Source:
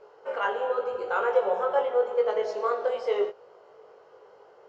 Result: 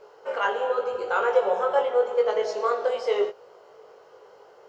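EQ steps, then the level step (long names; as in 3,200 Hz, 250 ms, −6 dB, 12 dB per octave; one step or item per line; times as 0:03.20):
high-shelf EQ 4,200 Hz +9.5 dB
+2.0 dB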